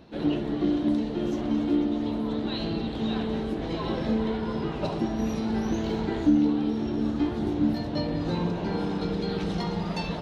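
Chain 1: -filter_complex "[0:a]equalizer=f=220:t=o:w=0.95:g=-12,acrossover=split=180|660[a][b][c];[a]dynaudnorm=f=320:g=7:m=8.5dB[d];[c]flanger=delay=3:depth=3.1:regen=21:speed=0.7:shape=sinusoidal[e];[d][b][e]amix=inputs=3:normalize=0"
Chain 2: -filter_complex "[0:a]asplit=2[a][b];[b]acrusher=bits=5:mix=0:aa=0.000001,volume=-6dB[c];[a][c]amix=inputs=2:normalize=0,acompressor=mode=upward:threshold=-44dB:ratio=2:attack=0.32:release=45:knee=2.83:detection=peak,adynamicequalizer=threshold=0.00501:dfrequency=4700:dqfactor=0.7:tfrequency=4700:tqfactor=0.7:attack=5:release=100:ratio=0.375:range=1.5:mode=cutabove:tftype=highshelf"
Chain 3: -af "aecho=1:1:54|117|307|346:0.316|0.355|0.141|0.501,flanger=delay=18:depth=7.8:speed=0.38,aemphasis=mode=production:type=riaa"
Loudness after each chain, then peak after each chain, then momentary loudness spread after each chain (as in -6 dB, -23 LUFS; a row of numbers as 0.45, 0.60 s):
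-31.5, -24.0, -33.0 LUFS; -14.5, -7.5, -19.0 dBFS; 4, 5, 3 LU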